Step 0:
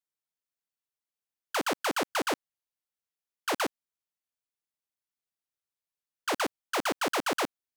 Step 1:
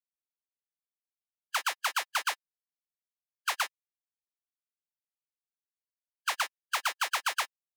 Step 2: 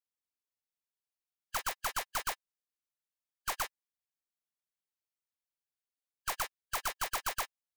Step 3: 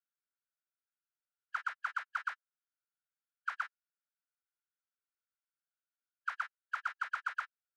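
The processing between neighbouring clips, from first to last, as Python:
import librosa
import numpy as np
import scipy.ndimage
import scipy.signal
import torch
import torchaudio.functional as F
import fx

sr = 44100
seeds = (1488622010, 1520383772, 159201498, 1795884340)

y1 = fx.bin_expand(x, sr, power=3.0)
y1 = scipy.signal.sosfilt(scipy.signal.butter(4, 910.0, 'highpass', fs=sr, output='sos'), y1)
y1 = F.gain(torch.from_numpy(y1), 5.0).numpy()
y2 = (np.mod(10.0 ** (21.5 / 20.0) * y1 + 1.0, 2.0) - 1.0) / 10.0 ** (21.5 / 20.0)
y2 = F.gain(torch.from_numpy(y2), -3.0).numpy()
y3 = fx.ladder_bandpass(y2, sr, hz=1500.0, resonance_pct=80)
y3 = F.gain(torch.from_numpy(y3), 4.0).numpy()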